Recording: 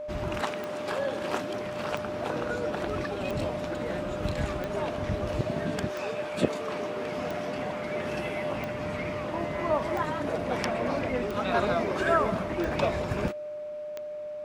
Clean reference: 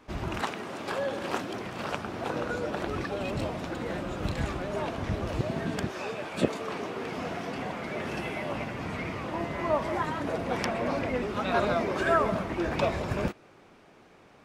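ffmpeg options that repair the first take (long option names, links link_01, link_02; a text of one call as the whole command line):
ffmpeg -i in.wav -af "adeclick=threshold=4,bandreject=frequency=600:width=30" out.wav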